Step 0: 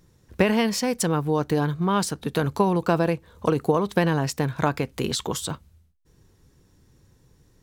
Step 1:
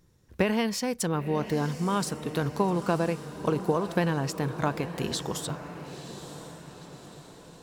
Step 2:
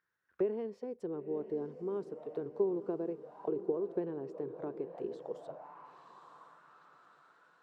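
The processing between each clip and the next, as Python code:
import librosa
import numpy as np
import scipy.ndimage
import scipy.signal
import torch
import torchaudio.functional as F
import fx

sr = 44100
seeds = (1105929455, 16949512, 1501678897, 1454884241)

y1 = fx.echo_diffused(x, sr, ms=966, feedback_pct=52, wet_db=-11.5)
y1 = y1 * 10.0 ** (-5.0 / 20.0)
y2 = fx.auto_wah(y1, sr, base_hz=390.0, top_hz=1600.0, q=5.6, full_db=-26.0, direction='down')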